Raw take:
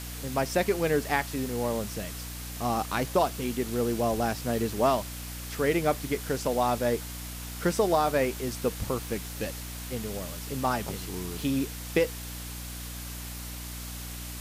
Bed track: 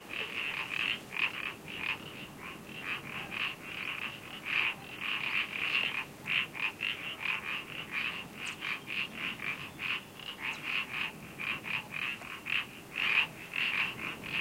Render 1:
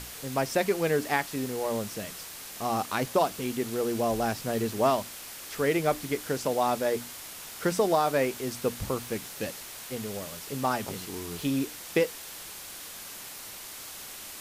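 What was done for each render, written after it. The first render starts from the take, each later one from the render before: hum notches 60/120/180/240/300 Hz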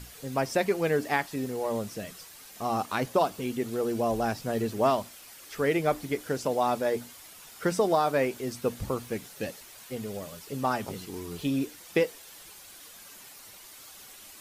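noise reduction 9 dB, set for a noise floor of -43 dBFS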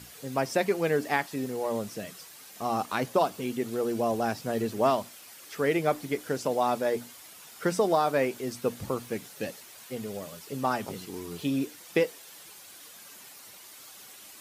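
high-pass 110 Hz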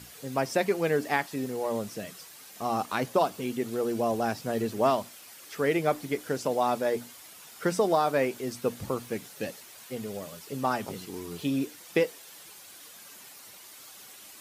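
no audible change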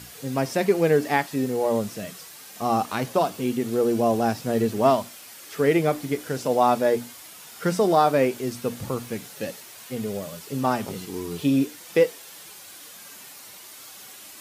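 harmonic-percussive split harmonic +8 dB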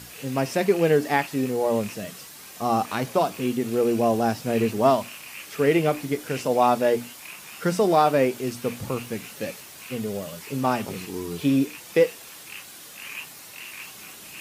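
add bed track -9 dB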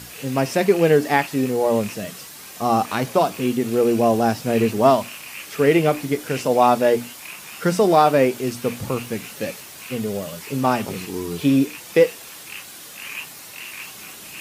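trim +4 dB

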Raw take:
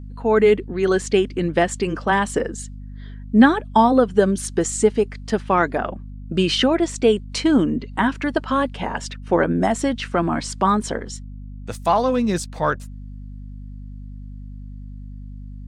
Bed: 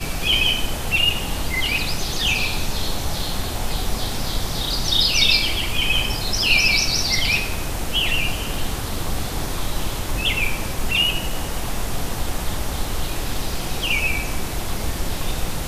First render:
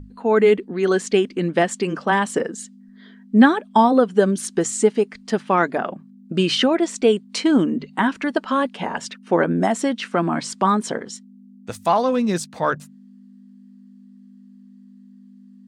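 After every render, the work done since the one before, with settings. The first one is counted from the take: hum notches 50/100/150 Hz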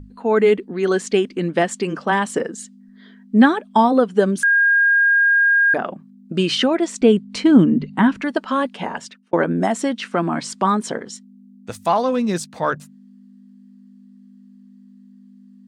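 4.43–5.74 s: bleep 1.62 kHz -11.5 dBFS; 7.01–8.21 s: tone controls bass +12 dB, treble -5 dB; 8.87–9.33 s: fade out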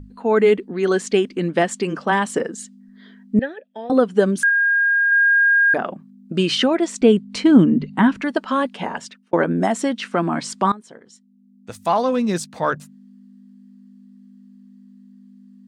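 3.39–3.90 s: vowel filter e; 4.47–5.12 s: doubling 22 ms -6 dB; 10.72–12.00 s: fade in quadratic, from -18.5 dB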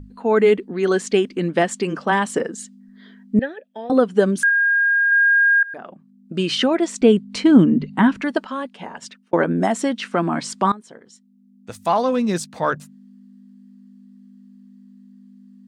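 5.63–6.75 s: fade in, from -22 dB; 8.47–9.02 s: gain -7.5 dB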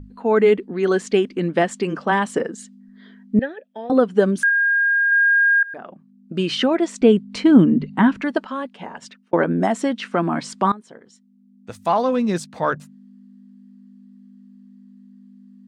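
treble shelf 4.9 kHz -7 dB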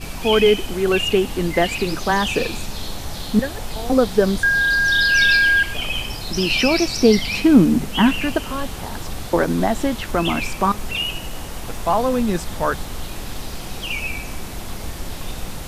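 add bed -5 dB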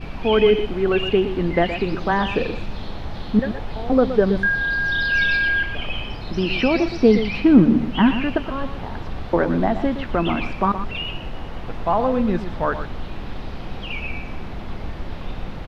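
distance through air 330 m; delay 120 ms -10.5 dB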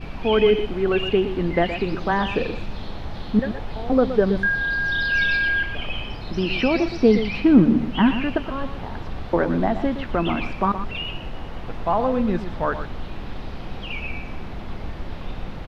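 trim -1.5 dB

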